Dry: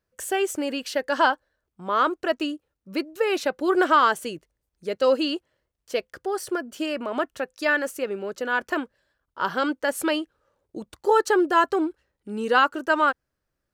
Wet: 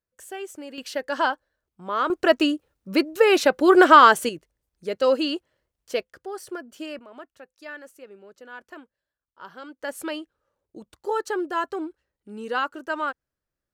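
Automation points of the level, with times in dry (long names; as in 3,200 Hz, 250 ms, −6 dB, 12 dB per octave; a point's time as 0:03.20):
−11 dB
from 0:00.78 −3 dB
from 0:02.10 +6.5 dB
from 0:04.29 0 dB
from 0:06.03 −7 dB
from 0:06.99 −16.5 dB
from 0:09.79 −7 dB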